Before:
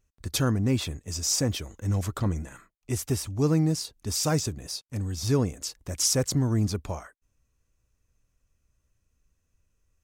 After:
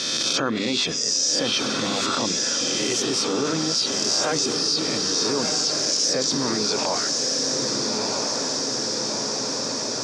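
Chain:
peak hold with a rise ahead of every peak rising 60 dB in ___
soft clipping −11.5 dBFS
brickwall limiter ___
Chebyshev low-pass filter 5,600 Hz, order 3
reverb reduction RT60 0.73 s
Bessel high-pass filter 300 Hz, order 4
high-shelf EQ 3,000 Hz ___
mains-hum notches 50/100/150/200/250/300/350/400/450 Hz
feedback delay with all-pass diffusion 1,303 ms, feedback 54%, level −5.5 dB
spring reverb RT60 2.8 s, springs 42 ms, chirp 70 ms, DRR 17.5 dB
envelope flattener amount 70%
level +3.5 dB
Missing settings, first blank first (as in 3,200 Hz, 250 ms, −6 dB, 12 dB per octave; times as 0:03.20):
0.82 s, −19.5 dBFS, +7.5 dB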